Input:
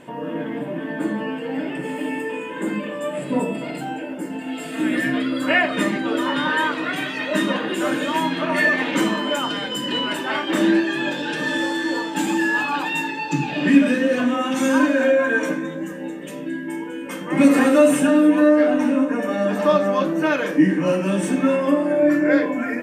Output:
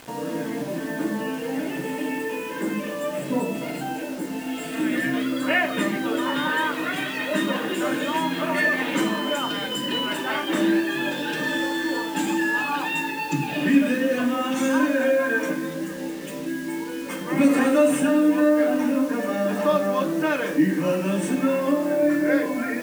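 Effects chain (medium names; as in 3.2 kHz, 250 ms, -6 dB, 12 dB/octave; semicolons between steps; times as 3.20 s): in parallel at -2 dB: compression 5:1, threshold -25 dBFS, peak gain reduction 15.5 dB; on the sum: bit crusher 6-bit; trim -5.5 dB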